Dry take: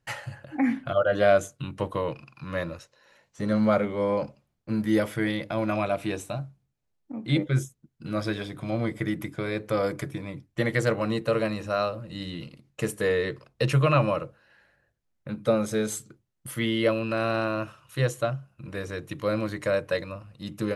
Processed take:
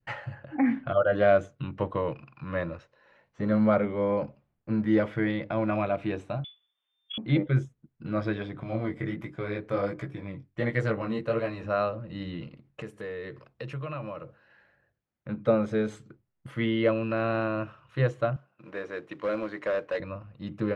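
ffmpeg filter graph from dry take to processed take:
ffmpeg -i in.wav -filter_complex "[0:a]asettb=1/sr,asplit=3[link_01][link_02][link_03];[link_01]atrim=end=6.444[link_04];[link_02]atrim=start=6.44:end=7.18,asetpts=PTS-STARTPTS,afade=type=in:duration=0.004:curve=qsin,afade=type=out:start_time=0.736:duration=0.004:curve=qsin,acontrast=57,lowpass=frequency=3100:width_type=q:width=0.5098,lowpass=frequency=3100:width_type=q:width=0.6013,lowpass=frequency=3100:width_type=q:width=0.9,lowpass=frequency=3100:width_type=q:width=2.563,afreqshift=-3600[link_05];[link_03]atrim=start=7.176[link_06];[link_04][link_05]acrossfade=duration=0.004:curve1=hsin:curve2=qsin[link_07];[link_07][link_06]acrossfade=duration=0.004:curve1=qsin:curve2=hsin,asettb=1/sr,asplit=3[link_08][link_09][link_10];[link_08]atrim=end=8.634[link_11];[link_09]atrim=start=8.63:end=11.64,asetpts=PTS-STARTPTS,afade=type=in:duration=0.004:curve=qsin,afade=type=out:start_time=3.006:duration=0.004:curve=qsin,highshelf=frequency=6500:gain=11,flanger=delay=16:depth=6.4:speed=1.4[link_12];[link_10]atrim=start=11.636[link_13];[link_11][link_12]acrossfade=duration=0.004:curve1=hsin:curve2=qsin[link_14];[link_14][link_13]acrossfade=duration=0.004:curve1=qsin:curve2=hsin,asettb=1/sr,asplit=3[link_15][link_16][link_17];[link_15]atrim=end=12.814[link_18];[link_16]atrim=start=12.81:end=15.28,asetpts=PTS-STARTPTS,afade=type=in:duration=0.004:curve=qsin,afade=type=out:start_time=2.466:duration=0.004:curve=qsin,highpass=63,aemphasis=mode=production:type=50fm,acompressor=threshold=-39dB:ratio=2.5:attack=3.2:release=140:knee=1:detection=peak[link_19];[link_17]atrim=start=15.276[link_20];[link_18][link_19]acrossfade=duration=0.004:curve1=hsin:curve2=qsin[link_21];[link_21][link_20]acrossfade=duration=0.004:curve1=qsin:curve2=hsin,asettb=1/sr,asplit=3[link_22][link_23][link_24];[link_22]atrim=end=18.364[link_25];[link_23]atrim=start=18.36:end=20,asetpts=PTS-STARTPTS,afade=type=in:duration=0.004:curve=qsin,afade=type=out:start_time=1.636:duration=0.004:curve=qsin,highpass=310,asoftclip=type=hard:threshold=-24.5dB,acrusher=bits=4:mode=log:mix=0:aa=0.000001[link_26];[link_24]atrim=start=19.996[link_27];[link_25][link_26]acrossfade=duration=0.004:curve1=hsin:curve2=qsin[link_28];[link_28][link_27]acrossfade=duration=0.004:curve1=qsin:curve2=hsin,lowpass=2300,adynamicequalizer=threshold=0.02:dfrequency=970:dqfactor=0.75:tfrequency=970:tqfactor=0.75:attack=5:release=100:ratio=0.375:range=1.5:mode=cutabove:tftype=bell" out.wav

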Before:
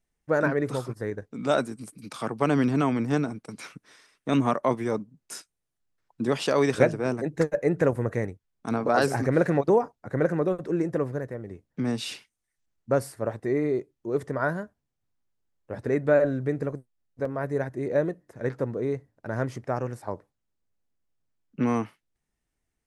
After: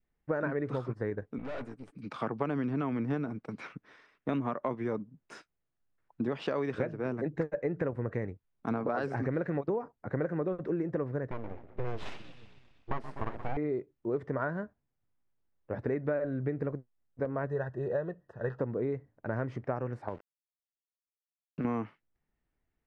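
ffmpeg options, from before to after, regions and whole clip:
ffmpeg -i in.wav -filter_complex "[0:a]asettb=1/sr,asplit=3[link_01][link_02][link_03];[link_01]atrim=end=1.384[link_04];[link_02]atrim=start=1.38:end=1.95,asetpts=PTS-STARTPTS,afade=type=in:duration=0.004:curve=qsin,afade=type=out:start_time=0.566:duration=0.004:curve=qsin,lowshelf=frequency=190:gain=-6.5,aecho=1:1:7:0.42,atrim=end_sample=25137,aeval=exprs='(tanh(70.8*val(0)+0.75)-tanh(0.75))/70.8':channel_layout=same[link_05];[link_03]atrim=start=1.946[link_06];[link_04][link_05]acrossfade=duration=0.004:curve1=hsin:curve2=qsin[link_07];[link_07][link_06]acrossfade=duration=0.004:curve1=qsin:curve2=hsin,asettb=1/sr,asplit=3[link_08][link_09][link_10];[link_08]atrim=end=11.314[link_11];[link_09]atrim=start=11.31:end=13.57,asetpts=PTS-STARTPTS,afade=type=in:duration=0.004:curve=qsin,afade=type=out:start_time=2.256:duration=0.004:curve=qsin,asplit=8[link_12][link_13][link_14][link_15][link_16][link_17][link_18][link_19];[link_13]adelay=124,afreqshift=-30,volume=-13.5dB[link_20];[link_14]adelay=248,afreqshift=-60,volume=-17.4dB[link_21];[link_15]adelay=372,afreqshift=-90,volume=-21.3dB[link_22];[link_16]adelay=496,afreqshift=-120,volume=-25.1dB[link_23];[link_17]adelay=620,afreqshift=-150,volume=-29dB[link_24];[link_18]adelay=744,afreqshift=-180,volume=-32.9dB[link_25];[link_19]adelay=868,afreqshift=-210,volume=-36.8dB[link_26];[link_12][link_20][link_21][link_22][link_23][link_24][link_25][link_26]amix=inputs=8:normalize=0,atrim=end_sample=99666,aeval=exprs='abs(val(0))':channel_layout=same[link_27];[link_10]atrim=start=13.566[link_28];[link_11][link_27]acrossfade=duration=0.004:curve1=hsin:curve2=qsin[link_29];[link_29][link_28]acrossfade=duration=0.004:curve1=qsin:curve2=hsin,asettb=1/sr,asplit=3[link_30][link_31][link_32];[link_30]atrim=end=17.474[link_33];[link_31]atrim=start=17.47:end=18.61,asetpts=PTS-STARTPTS,afade=type=in:duration=0.004:curve=qsin,afade=type=out:start_time=1.136:duration=0.004:curve=qsin,asuperstop=centerf=2200:order=20:qfactor=4.2,equalizer=frequency=280:width_type=o:width=0.53:gain=-13[link_34];[link_32]atrim=start=18.606[link_35];[link_33][link_34]acrossfade=duration=0.004:curve1=hsin:curve2=qsin[link_36];[link_36][link_35]acrossfade=duration=0.004:curve1=qsin:curve2=hsin,asettb=1/sr,asplit=3[link_37][link_38][link_39];[link_37]atrim=end=20.084[link_40];[link_38]atrim=start=20.08:end=21.65,asetpts=PTS-STARTPTS,afade=type=in:duration=0.004:curve=qsin,afade=type=out:start_time=1.566:duration=0.004:curve=qsin,acompressor=threshold=-30dB:ratio=6:attack=3.2:release=140:knee=1:detection=peak,aeval=exprs='val(0)*gte(abs(val(0)),0.00335)':channel_layout=same[link_41];[link_39]atrim=start=21.646[link_42];[link_40][link_41]acrossfade=duration=0.004:curve1=hsin:curve2=qsin[link_43];[link_43][link_42]acrossfade=duration=0.004:curve1=qsin:curve2=hsin,lowpass=2300,adynamicequalizer=threshold=0.0126:dfrequency=760:dqfactor=1.8:tfrequency=760:tqfactor=1.8:attack=5:release=100:ratio=0.375:range=2:mode=cutabove:tftype=bell,acompressor=threshold=-28dB:ratio=10" out.wav

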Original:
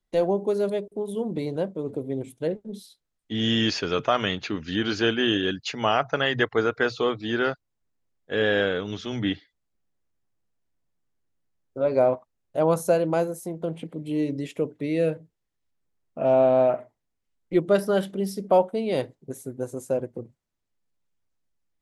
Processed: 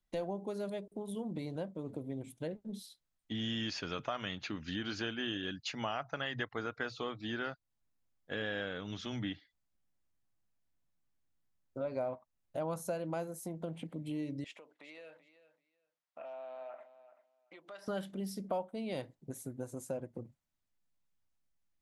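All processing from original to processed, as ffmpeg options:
ffmpeg -i in.wav -filter_complex "[0:a]asettb=1/sr,asplit=3[link_01][link_02][link_03];[link_01]atrim=end=14.444[link_04];[link_02]atrim=start=14.44:end=17.88,asetpts=PTS-STARTPTS,afade=type=in:duration=0.004:curve=qsin,afade=type=out:start_time=3.436:duration=0.004:curve=qsin,acompressor=threshold=-32dB:ratio=12:attack=3.2:release=140:knee=1:detection=peak,highpass=790,lowpass=5500,aecho=1:1:384|768:0.188|0.032,atrim=end_sample=151704[link_05];[link_03]atrim=start=17.876[link_06];[link_04][link_05]acrossfade=duration=0.004:curve1=hsin:curve2=qsin[link_07];[link_07][link_06]acrossfade=duration=0.004:curve1=qsin:curve2=hsin,equalizer=frequency=420:width_type=o:width=0.54:gain=-7.5,acompressor=threshold=-35dB:ratio=2.5,volume=-3.5dB" out.wav

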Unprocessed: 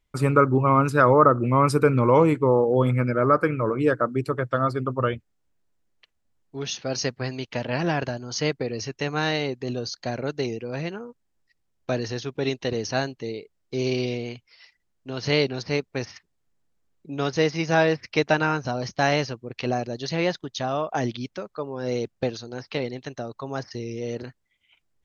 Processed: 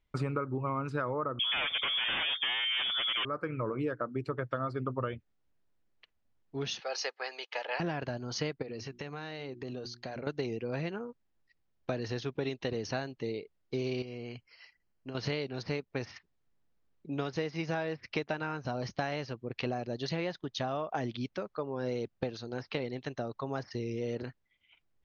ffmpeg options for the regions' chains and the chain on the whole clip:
ffmpeg -i in.wav -filter_complex "[0:a]asettb=1/sr,asplit=3[link_01][link_02][link_03];[link_01]atrim=end=1.394[link_04];[link_02]atrim=start=1.39:end=3.25,asetpts=PTS-STARTPTS,afade=type=in:duration=0.004:curve=qsin,afade=type=out:start_time=1.856:duration=0.004:curve=qsin,highpass=260,aeval=exprs='0.447*sin(PI/2*5.62*val(0)/0.447)':channel_layout=same,lowpass=frequency=3100:width_type=q:width=0.5098,lowpass=frequency=3100:width_type=q:width=0.6013,lowpass=frequency=3100:width_type=q:width=0.9,lowpass=frequency=3100:width_type=q:width=2.563,afreqshift=-3600[link_05];[link_03]atrim=start=3.246[link_06];[link_04][link_05]acrossfade=duration=0.004:curve1=hsin:curve2=qsin[link_07];[link_07][link_06]acrossfade=duration=0.004:curve1=qsin:curve2=hsin,asettb=1/sr,asplit=3[link_08][link_09][link_10];[link_08]atrim=end=6.804[link_11];[link_09]atrim=start=6.8:end=7.8,asetpts=PTS-STARTPTS,afade=type=in:duration=0.004:curve=qsin,afade=type=out:start_time=0.996:duration=0.004:curve=qsin,highpass=frequency=570:width=0.5412,highpass=frequency=570:width=1.3066,aecho=1:1:2.4:0.36,atrim=end_sample=44100[link_12];[link_10]atrim=start=7.796[link_13];[link_11][link_12]acrossfade=duration=0.004:curve1=hsin:curve2=qsin[link_14];[link_14][link_13]acrossfade=duration=0.004:curve1=qsin:curve2=hsin,asettb=1/sr,asplit=3[link_15][link_16][link_17];[link_15]atrim=end=8.624[link_18];[link_16]atrim=start=8.62:end=10.27,asetpts=PTS-STARTPTS,afade=type=in:duration=0.004:curve=qsin,afade=type=out:start_time=1.646:duration=0.004:curve=qsin,bandreject=frequency=60:width_type=h:width=6,bandreject=frequency=120:width_type=h:width=6,bandreject=frequency=180:width_type=h:width=6,bandreject=frequency=240:width_type=h:width=6,bandreject=frequency=300:width_type=h:width=6,bandreject=frequency=360:width_type=h:width=6,acompressor=threshold=-33dB:ratio=10:attack=3.2:release=140:knee=1:detection=peak[link_19];[link_17]atrim=start=10.266[link_20];[link_18][link_19]acrossfade=duration=0.004:curve1=hsin:curve2=qsin[link_21];[link_21][link_20]acrossfade=duration=0.004:curve1=qsin:curve2=hsin,asettb=1/sr,asplit=3[link_22][link_23][link_24];[link_22]atrim=end=14.024[link_25];[link_23]atrim=start=14.02:end=15.15,asetpts=PTS-STARTPTS,afade=type=in:duration=0.004:curve=qsin,afade=type=out:start_time=1.126:duration=0.004:curve=qsin,acompressor=threshold=-33dB:ratio=12:attack=3.2:release=140:knee=1:detection=peak,asuperstop=centerf=3600:order=12:qfactor=5.9[link_26];[link_24]atrim=start=15.146[link_27];[link_25][link_26]acrossfade=duration=0.004:curve1=hsin:curve2=qsin[link_28];[link_28][link_27]acrossfade=duration=0.004:curve1=qsin:curve2=hsin,lowpass=4400,acompressor=threshold=-27dB:ratio=12,volume=-2.5dB" out.wav

